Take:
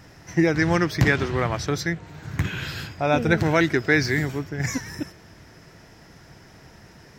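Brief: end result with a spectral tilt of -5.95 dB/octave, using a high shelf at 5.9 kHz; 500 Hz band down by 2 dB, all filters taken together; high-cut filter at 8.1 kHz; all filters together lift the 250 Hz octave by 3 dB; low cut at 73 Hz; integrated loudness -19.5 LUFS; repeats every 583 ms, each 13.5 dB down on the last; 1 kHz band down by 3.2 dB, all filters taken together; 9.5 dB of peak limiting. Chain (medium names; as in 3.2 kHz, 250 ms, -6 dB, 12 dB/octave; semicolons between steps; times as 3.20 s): high-pass 73 Hz; low-pass 8.1 kHz; peaking EQ 250 Hz +7 dB; peaking EQ 500 Hz -5 dB; peaking EQ 1 kHz -3 dB; treble shelf 5.9 kHz -5.5 dB; peak limiter -12.5 dBFS; feedback delay 583 ms, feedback 21%, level -13.5 dB; trim +5.5 dB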